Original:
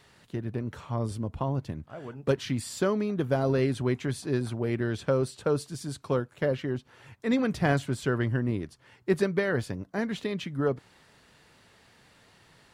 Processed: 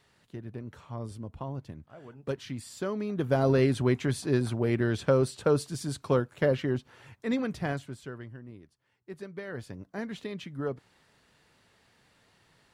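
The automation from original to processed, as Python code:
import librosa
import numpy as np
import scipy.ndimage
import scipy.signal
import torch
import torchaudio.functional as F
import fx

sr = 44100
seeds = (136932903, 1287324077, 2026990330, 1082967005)

y = fx.gain(x, sr, db=fx.line((2.8, -7.5), (3.43, 2.0), (6.76, 2.0), (7.61, -6.0), (8.38, -18.0), (9.11, -18.0), (9.83, -6.0)))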